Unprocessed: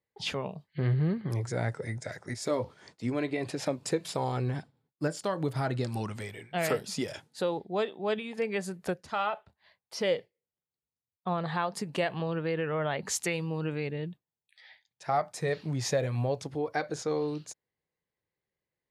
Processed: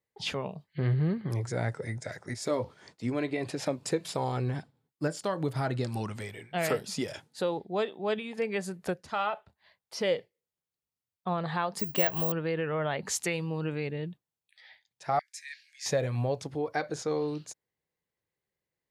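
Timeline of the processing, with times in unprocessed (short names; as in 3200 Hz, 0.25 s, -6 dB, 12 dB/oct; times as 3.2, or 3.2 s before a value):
11.79–12.32 careless resampling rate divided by 2×, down filtered, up zero stuff
15.19–15.86 rippled Chebyshev high-pass 1600 Hz, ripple 6 dB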